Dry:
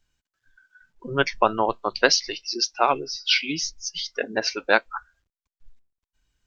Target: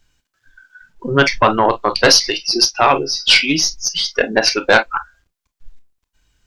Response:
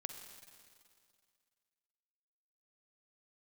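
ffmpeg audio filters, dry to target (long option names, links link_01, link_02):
-filter_complex "[1:a]atrim=start_sample=2205,atrim=end_sample=4410,asetrate=83790,aresample=44100[link_01];[0:a][link_01]afir=irnorm=-1:irlink=0,aeval=exprs='0.282*(cos(1*acos(clip(val(0)/0.282,-1,1)))-cos(1*PI/2))+0.1*(cos(2*acos(clip(val(0)/0.282,-1,1)))-cos(2*PI/2))+0.0126*(cos(3*acos(clip(val(0)/0.282,-1,1)))-cos(3*PI/2))':channel_layout=same,apsyclip=23.5dB,volume=-2dB"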